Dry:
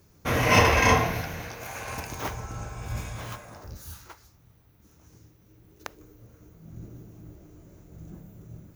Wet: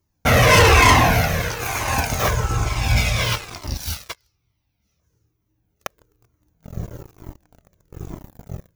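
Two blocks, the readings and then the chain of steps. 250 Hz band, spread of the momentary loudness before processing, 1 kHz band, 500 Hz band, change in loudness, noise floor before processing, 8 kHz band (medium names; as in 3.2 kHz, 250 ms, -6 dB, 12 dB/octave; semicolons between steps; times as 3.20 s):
+6.5 dB, 25 LU, +8.0 dB, +7.5 dB, +8.0 dB, -59 dBFS, +10.5 dB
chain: time-frequency box 2.66–5.00 s, 2–6 kHz +9 dB; waveshaping leveller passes 5; Shepard-style flanger falling 1.1 Hz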